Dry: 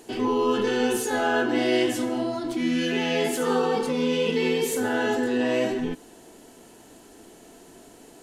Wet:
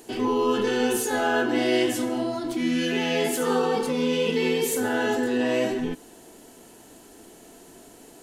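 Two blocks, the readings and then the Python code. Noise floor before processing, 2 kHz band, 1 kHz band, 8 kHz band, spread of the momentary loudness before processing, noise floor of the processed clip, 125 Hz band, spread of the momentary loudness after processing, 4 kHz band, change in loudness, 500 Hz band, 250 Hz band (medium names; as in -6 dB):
-50 dBFS, 0.0 dB, 0.0 dB, +2.5 dB, 4 LU, -50 dBFS, 0.0 dB, 4 LU, +0.5 dB, 0.0 dB, 0.0 dB, 0.0 dB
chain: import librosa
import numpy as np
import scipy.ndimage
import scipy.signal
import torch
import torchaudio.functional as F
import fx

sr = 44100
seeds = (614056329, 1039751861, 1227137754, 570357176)

y = fx.high_shelf(x, sr, hz=11000.0, db=7.5)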